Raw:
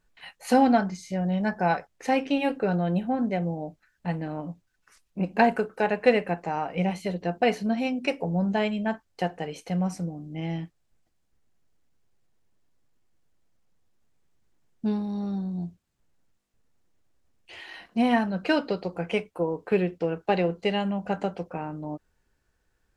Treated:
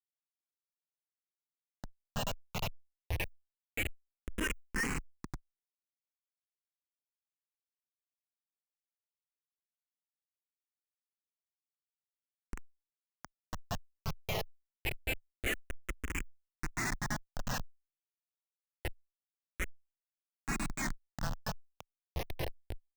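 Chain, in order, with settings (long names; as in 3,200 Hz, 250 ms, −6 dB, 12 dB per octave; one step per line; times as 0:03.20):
played backwards from end to start
Butterworth high-pass 1,700 Hz 72 dB per octave
in parallel at −3 dB: downward compressor 10 to 1, threshold −49 dBFS, peak gain reduction 24 dB
on the sum: high-frequency loss of the air 230 metres
on a send: single-tap delay 527 ms −23.5 dB
on the sum: comparator with hysteresis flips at −35.5 dBFS
frequency shifter mixed with the dry sound −0.26 Hz
level +15 dB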